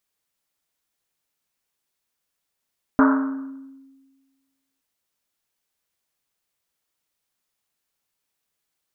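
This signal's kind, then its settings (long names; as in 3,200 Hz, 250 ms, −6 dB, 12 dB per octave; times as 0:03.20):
drum after Risset length 1.82 s, pitch 270 Hz, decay 1.50 s, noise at 1,200 Hz, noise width 660 Hz, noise 30%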